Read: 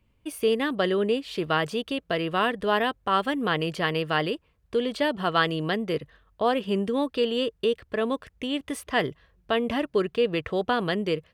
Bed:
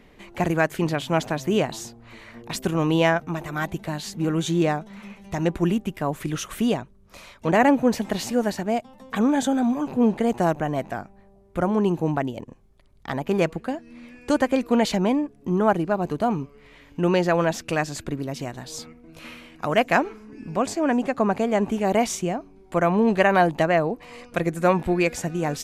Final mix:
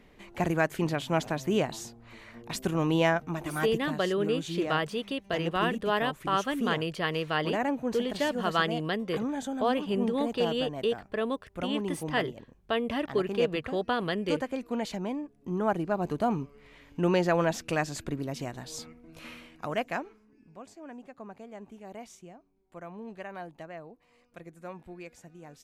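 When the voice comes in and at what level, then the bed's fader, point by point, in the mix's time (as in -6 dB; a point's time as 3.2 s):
3.20 s, -4.0 dB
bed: 3.82 s -5 dB
4.05 s -12 dB
15.17 s -12 dB
16.08 s -4.5 dB
19.4 s -4.5 dB
20.54 s -23 dB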